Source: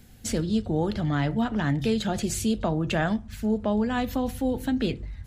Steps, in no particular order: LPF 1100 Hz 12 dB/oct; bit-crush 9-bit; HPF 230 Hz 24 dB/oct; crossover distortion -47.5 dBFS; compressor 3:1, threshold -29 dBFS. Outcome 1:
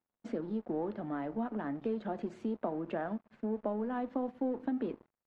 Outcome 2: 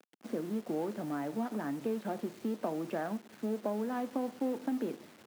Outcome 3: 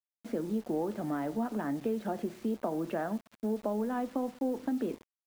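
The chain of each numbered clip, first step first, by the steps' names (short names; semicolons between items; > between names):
compressor > bit-crush > HPF > crossover distortion > LPF; compressor > LPF > crossover distortion > bit-crush > HPF; HPF > crossover distortion > compressor > LPF > bit-crush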